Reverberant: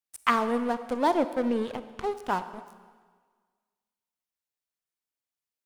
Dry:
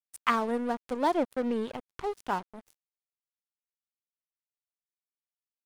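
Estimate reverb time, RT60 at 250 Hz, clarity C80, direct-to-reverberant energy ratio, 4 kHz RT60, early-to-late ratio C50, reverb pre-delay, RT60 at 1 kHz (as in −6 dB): 1.6 s, 1.6 s, 13.5 dB, 11.5 dB, 1.5 s, 12.5 dB, 25 ms, 1.6 s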